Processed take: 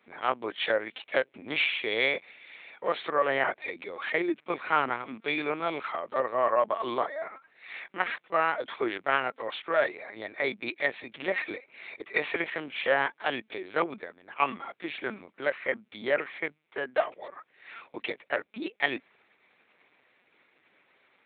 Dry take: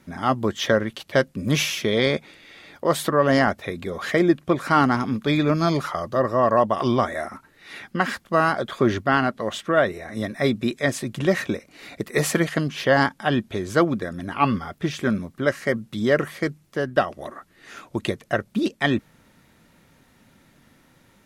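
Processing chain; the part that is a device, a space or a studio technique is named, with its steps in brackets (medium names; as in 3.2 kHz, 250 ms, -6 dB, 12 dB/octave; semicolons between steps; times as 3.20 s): 13.78–14.42 s: expander -23 dBFS; talking toy (LPC vocoder at 8 kHz pitch kept; high-pass 430 Hz 12 dB/octave; peaking EQ 2.3 kHz +9.5 dB 0.35 oct); 6.67–7.19 s: peaking EQ 2.5 kHz -4 dB -> -13 dB 0.55 oct; trim -5.5 dB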